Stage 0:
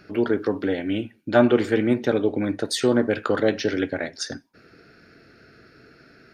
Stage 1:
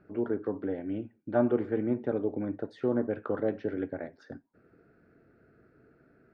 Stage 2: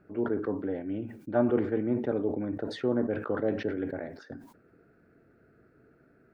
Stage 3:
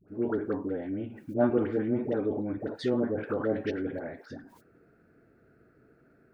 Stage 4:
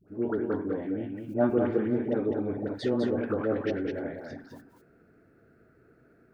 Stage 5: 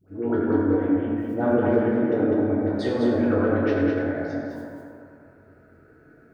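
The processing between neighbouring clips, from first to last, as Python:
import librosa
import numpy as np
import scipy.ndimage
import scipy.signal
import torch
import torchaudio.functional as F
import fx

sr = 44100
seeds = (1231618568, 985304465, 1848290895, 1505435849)

y1 = scipy.signal.sosfilt(scipy.signal.butter(2, 1100.0, 'lowpass', fs=sr, output='sos'), x)
y1 = y1 * 10.0 ** (-8.5 / 20.0)
y2 = fx.sustainer(y1, sr, db_per_s=87.0)
y3 = fx.dispersion(y2, sr, late='highs', ms=84.0, hz=740.0)
y4 = y3 + 10.0 ** (-5.0 / 20.0) * np.pad(y3, (int(204 * sr / 1000.0), 0))[:len(y3)]
y5 = fx.rev_fdn(y4, sr, rt60_s=2.5, lf_ratio=0.8, hf_ratio=0.4, size_ms=63.0, drr_db=-6.0)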